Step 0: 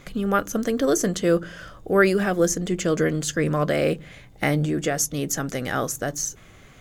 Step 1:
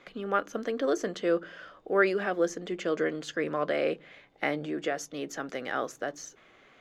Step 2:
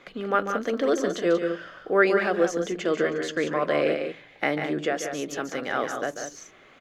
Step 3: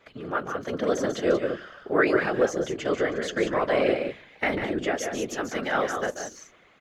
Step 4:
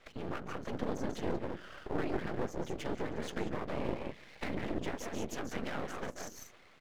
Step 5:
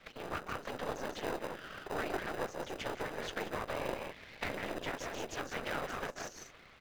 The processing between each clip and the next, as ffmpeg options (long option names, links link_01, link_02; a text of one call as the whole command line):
ffmpeg -i in.wav -filter_complex "[0:a]acrossover=split=260 4500:gain=0.0891 1 0.0891[link_01][link_02][link_03];[link_01][link_02][link_03]amix=inputs=3:normalize=0,volume=-5dB" out.wav
ffmpeg -i in.wav -af "aecho=1:1:142.9|183.7:0.355|0.398,volume=4dB" out.wav
ffmpeg -i in.wav -af "dynaudnorm=framelen=240:gausssize=7:maxgain=8dB,afftfilt=real='hypot(re,im)*cos(2*PI*random(0))':imag='hypot(re,im)*sin(2*PI*random(1))':win_size=512:overlap=0.75" out.wav
ffmpeg -i in.wav -filter_complex "[0:a]acrossover=split=270[link_01][link_02];[link_02]acompressor=threshold=-37dB:ratio=6[link_03];[link_01][link_03]amix=inputs=2:normalize=0,aeval=exprs='max(val(0),0)':channel_layout=same,volume=1dB" out.wav
ffmpeg -i in.wav -filter_complex "[0:a]acrossover=split=520 6400:gain=0.112 1 0.2[link_01][link_02][link_03];[link_01][link_02][link_03]amix=inputs=3:normalize=0,asplit=2[link_04][link_05];[link_05]acrusher=samples=40:mix=1:aa=0.000001,volume=-5dB[link_06];[link_04][link_06]amix=inputs=2:normalize=0,volume=3.5dB" out.wav